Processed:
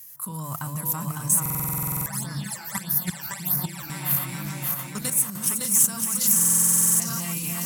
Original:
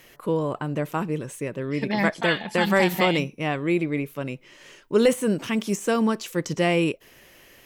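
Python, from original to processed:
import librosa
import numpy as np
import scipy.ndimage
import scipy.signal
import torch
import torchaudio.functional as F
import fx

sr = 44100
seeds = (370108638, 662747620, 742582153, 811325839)

y = fx.reverse_delay_fb(x, sr, ms=297, feedback_pct=65, wet_db=-5)
y = fx.hum_notches(y, sr, base_hz=50, count=3)
y = fx.echo_stepped(y, sr, ms=602, hz=3200.0, octaves=-1.4, feedback_pct=70, wet_db=-5.0)
y = fx.level_steps(y, sr, step_db=17)
y = scipy.signal.sosfilt(scipy.signal.butter(2, 63.0, 'highpass', fs=sr, output='sos'), y)
y = fx.rider(y, sr, range_db=5, speed_s=0.5)
y = fx.curve_eq(y, sr, hz=(160.0, 430.0, 970.0, 2900.0, 4900.0, 11000.0), db=(0, -26, -4, -11, 3, 15))
y = y + 10.0 ** (-3.5 / 20.0) * np.pad(y, (int(559 * sr / 1000.0), 0))[:len(y)]
y = fx.phaser_stages(y, sr, stages=12, low_hz=180.0, high_hz=3100.0, hz=1.6, feedback_pct=25, at=(1.54, 3.9))
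y = fx.high_shelf(y, sr, hz=7500.0, db=9.0)
y = fx.buffer_glitch(y, sr, at_s=(1.41, 6.35), block=2048, repeats=13)
y = y * librosa.db_to_amplitude(5.0)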